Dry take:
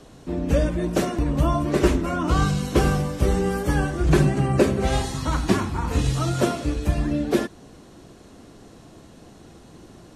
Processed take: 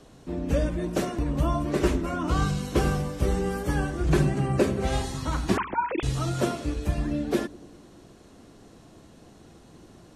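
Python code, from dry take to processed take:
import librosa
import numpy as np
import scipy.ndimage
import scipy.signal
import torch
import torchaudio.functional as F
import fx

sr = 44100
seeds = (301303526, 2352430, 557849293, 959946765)

y = fx.sine_speech(x, sr, at=(5.57, 6.03))
y = fx.echo_wet_lowpass(y, sr, ms=99, feedback_pct=61, hz=450.0, wet_db=-19)
y = y * librosa.db_to_amplitude(-4.5)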